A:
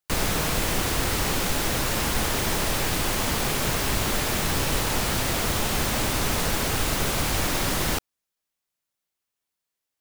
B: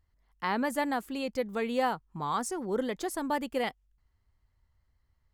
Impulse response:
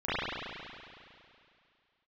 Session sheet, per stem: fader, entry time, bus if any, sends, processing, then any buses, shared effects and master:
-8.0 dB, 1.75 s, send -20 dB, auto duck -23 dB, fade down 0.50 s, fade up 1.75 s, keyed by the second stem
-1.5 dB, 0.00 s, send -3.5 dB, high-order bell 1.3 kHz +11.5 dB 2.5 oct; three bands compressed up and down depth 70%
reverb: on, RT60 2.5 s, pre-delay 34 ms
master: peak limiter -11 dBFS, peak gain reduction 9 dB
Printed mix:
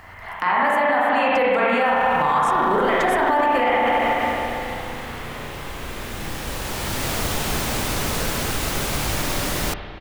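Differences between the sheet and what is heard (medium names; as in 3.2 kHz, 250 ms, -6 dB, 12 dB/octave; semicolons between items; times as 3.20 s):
stem A -8.0 dB -> 0.0 dB; stem B -1.5 dB -> +5.5 dB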